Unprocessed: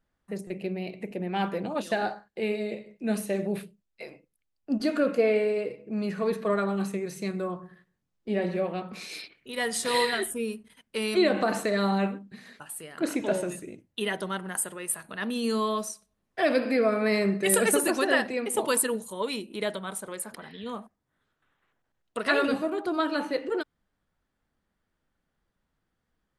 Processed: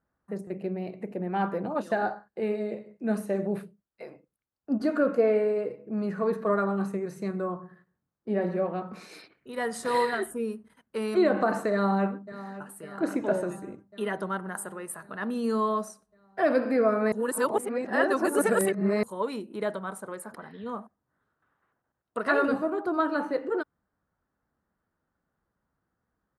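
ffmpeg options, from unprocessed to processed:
ffmpeg -i in.wav -filter_complex "[0:a]asplit=2[link_01][link_02];[link_02]afade=type=in:start_time=11.72:duration=0.01,afade=type=out:start_time=12.48:duration=0.01,aecho=0:1:550|1100|1650|2200|2750|3300|3850|4400|4950:0.177828|0.12448|0.0871357|0.060995|0.0426965|0.0298875|0.0209213|0.0146449|0.0102514[link_03];[link_01][link_03]amix=inputs=2:normalize=0,asplit=3[link_04][link_05][link_06];[link_04]atrim=end=17.122[link_07];[link_05]atrim=start=17.118:end=19.032,asetpts=PTS-STARTPTS,areverse[link_08];[link_06]atrim=start=19.028[link_09];[link_07][link_08]acrossfade=duration=0.004:curve1=hsin:curve2=hsin[link_10];[link_10][link_09]acrossfade=duration=0.004:curve1=hsin:curve2=hsin,highpass=54,highshelf=frequency=1900:width_type=q:width=1.5:gain=-9,bandreject=frequency=3400:width=22" out.wav

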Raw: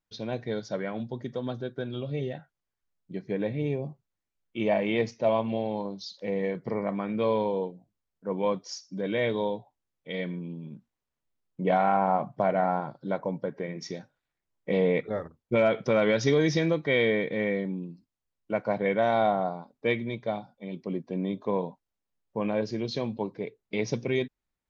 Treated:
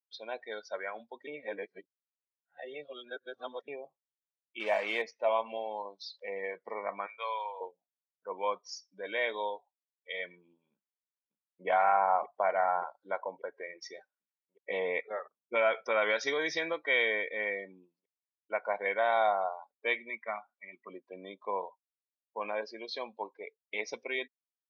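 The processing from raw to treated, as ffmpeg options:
ffmpeg -i in.wav -filter_complex "[0:a]asettb=1/sr,asplit=3[link_01][link_02][link_03];[link_01]atrim=end=4.604[link_04];[link_02]atrim=start=4.6:end=5.02,asetpts=PTS-STARTPTS,afade=type=in:duration=0.004:curve=qsin,afade=type=out:start_time=0.416:duration=0.004:curve=qsin,acrusher=bits=5:mix=0:aa=0.5[link_05];[link_03]atrim=start=5.016[link_06];[link_04][link_05]acrossfade=duration=0.004:curve1=hsin:curve2=qsin[link_07];[link_07][link_06]acrossfade=duration=0.004:curve1=qsin:curve2=hsin,asettb=1/sr,asplit=3[link_08][link_09][link_10];[link_08]atrim=end=7.064[link_11];[link_09]atrim=start=7.06:end=7.61,asetpts=PTS-STARTPTS,afade=type=in:duration=0.004:curve=qsin,afade=type=out:start_time=0.546:duration=0.004:curve=qsin,highpass=890[link_12];[link_10]atrim=start=7.606[link_13];[link_11][link_12]acrossfade=duration=0.004:curve1=hsin:curve2=qsin[link_14];[link_14][link_13]acrossfade=duration=0.004:curve1=qsin:curve2=hsin,asplit=2[link_15][link_16];[link_16]afade=type=in:start_time=10.72:duration=0.01,afade=type=out:start_time=11.67:duration=0.01,aecho=0:1:580|1160|1740|2320|2900|3480|4060|4640|5220|5800|6380|6960:0.375837|0.30067|0.240536|0.192429|0.153943|0.123154|0.0985235|0.0788188|0.0630551|0.050444|0.0403552|0.0322842[link_17];[link_15][link_17]amix=inputs=2:normalize=0,asettb=1/sr,asplit=3[link_18][link_19][link_20];[link_18]atrim=end=20.104[link_21];[link_19]atrim=start=20.1:end=20.89,asetpts=PTS-STARTPTS,afade=type=in:duration=0.004:curve=qsin,afade=type=out:start_time=0.786:duration=0.004:curve=qsin,highpass=150,equalizer=frequency=230:width_type=q:width=4:gain=6,equalizer=frequency=510:width_type=q:width=4:gain=-10,equalizer=frequency=810:width_type=q:width=4:gain=-4,equalizer=frequency=1200:width_type=q:width=4:gain=8,equalizer=frequency=2000:width_type=q:width=4:gain=9,lowpass=frequency=2600:width=0.5412,lowpass=frequency=2600:width=1.3066[link_22];[link_20]atrim=start=20.886[link_23];[link_21][link_22]acrossfade=duration=0.004:curve1=hsin:curve2=qsin[link_24];[link_24][link_23]acrossfade=duration=0.004:curve1=qsin:curve2=hsin,asplit=3[link_25][link_26][link_27];[link_25]atrim=end=1.272[link_28];[link_26]atrim=start=1.268:end=3.682,asetpts=PTS-STARTPTS,areverse[link_29];[link_27]atrim=start=3.678[link_30];[link_28][link_29]acrossfade=duration=0.004:curve1=hsin:curve2=hsin[link_31];[link_31][link_30]acrossfade=duration=0.004:curve1=hsin:curve2=hsin,highpass=950,afftdn=noise_reduction=19:noise_floor=-46,lowpass=frequency=2200:poles=1,volume=4dB" out.wav

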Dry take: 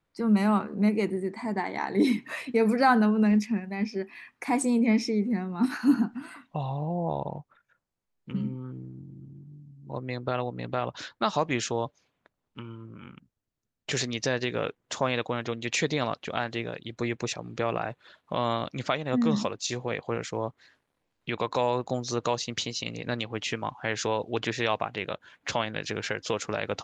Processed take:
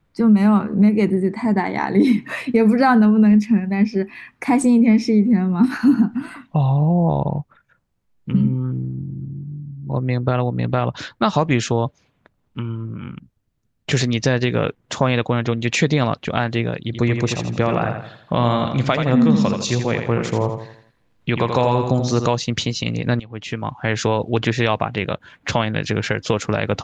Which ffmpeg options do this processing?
ffmpeg -i in.wav -filter_complex "[0:a]asettb=1/sr,asplit=3[link_01][link_02][link_03];[link_01]atrim=end=8.964[link_04];[link_02]atrim=start=8.96:end=10.59,asetpts=PTS-STARTPTS,afade=type=in:duration=0.004:curve=qsin,afade=type=out:start_time=1.626:duration=0.004:curve=qsin,highshelf=frequency=3500:gain=-4[link_05];[link_03]atrim=start=10.586[link_06];[link_04][link_05]acrossfade=duration=0.004:curve1=hsin:curve2=qsin[link_07];[link_07][link_06]acrossfade=duration=0.004:curve1=qsin:curve2=hsin,asettb=1/sr,asplit=3[link_08][link_09][link_10];[link_08]atrim=end=16.834[link_11];[link_09]atrim=start=16.83:end=22.26,asetpts=PTS-STARTPTS,afade=type=in:duration=0.004:curve=qsin,afade=type=out:start_time=5.426:duration=0.004:curve=qsin,aecho=1:1:83|166|249|332|415:0.447|0.183|0.0751|0.0308|0.0126,atrim=end_sample=239463[link_12];[link_10]atrim=start=22.256[link_13];[link_11][link_12]acrossfade=duration=0.004:curve1=hsin:curve2=qsin[link_14];[link_14][link_13]acrossfade=duration=0.004:curve1=qsin:curve2=hsin,asplit=2[link_15][link_16];[link_15]atrim=end=23.2,asetpts=PTS-STARTPTS,afade=type=out:start_time=23.196:duration=0.004:curve=hsin:silence=0.11885[link_17];[link_16]atrim=start=23.2,asetpts=PTS-STARTPTS,afade=type=in:duration=0.77:silence=0.11885[link_18];[link_17][link_18]concat=n=2:v=0:a=1,bass=frequency=250:gain=9,treble=frequency=4000:gain=-4,acompressor=threshold=-20dB:ratio=3,volume=8.5dB" out.wav

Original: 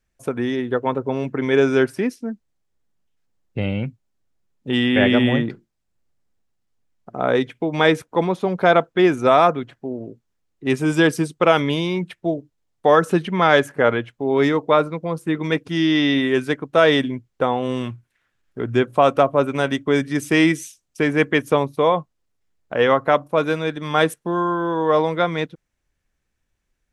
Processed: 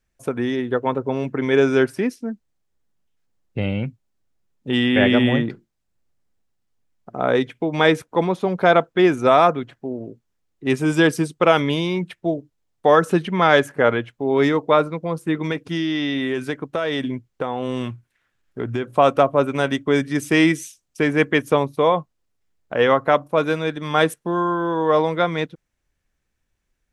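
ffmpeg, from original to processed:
ffmpeg -i in.wav -filter_complex "[0:a]asettb=1/sr,asplit=3[link_01][link_02][link_03];[link_01]atrim=end=15.514[link_04];[link_02]atrim=start=15.51:end=18.97,asetpts=PTS-STARTPTS,afade=type=in:duration=0.004:curve=qsin,afade=type=out:start_time=3.456:duration=0.004:curve=qsin,acompressor=threshold=-19dB:ratio=6:attack=3.2:release=140:knee=1:detection=peak[link_05];[link_03]atrim=start=18.966[link_06];[link_04][link_05]acrossfade=duration=0.004:curve1=hsin:curve2=qsin[link_07];[link_07][link_06]acrossfade=duration=0.004:curve1=qsin:curve2=hsin" out.wav

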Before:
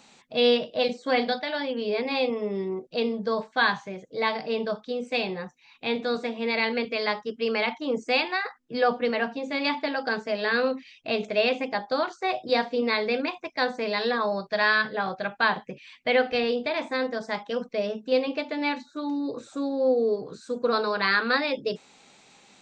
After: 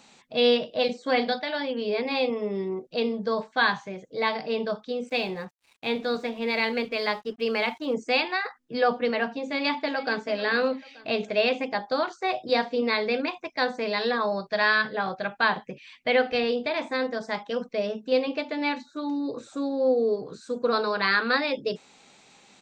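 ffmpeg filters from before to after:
ffmpeg -i in.wav -filter_complex "[0:a]asettb=1/sr,asplit=3[link_01][link_02][link_03];[link_01]atrim=end=5.094[link_04];[link_02]atrim=start=5.09:end=7.94,asetpts=PTS-STARTPTS,afade=type=in:duration=0.004:curve=qsin,afade=type=out:start_time=2.846:duration=0.004:curve=qsin,aeval=exprs='sgn(val(0))*max(abs(val(0))-0.00188,0)':channel_layout=same[link_05];[link_03]atrim=start=7.936[link_06];[link_04][link_05]acrossfade=duration=0.004:curve1=hsin:curve2=qsin[link_07];[link_07][link_06]acrossfade=duration=0.004:curve1=qsin:curve2=hsin,asplit=2[link_08][link_09];[link_09]afade=type=in:start_time=9.42:duration=0.01,afade=type=out:start_time=10.23:duration=0.01,aecho=0:1:440|880|1320:0.199526|0.0698342|0.024442[link_10];[link_08][link_10]amix=inputs=2:normalize=0" out.wav

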